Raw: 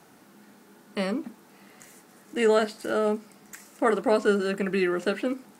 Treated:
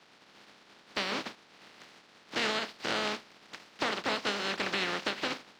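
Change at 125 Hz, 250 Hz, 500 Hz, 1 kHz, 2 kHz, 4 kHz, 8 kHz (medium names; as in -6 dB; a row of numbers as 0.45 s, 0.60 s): no reading, -12.0 dB, -13.5 dB, -4.0 dB, -0.5 dB, +6.5 dB, -1.0 dB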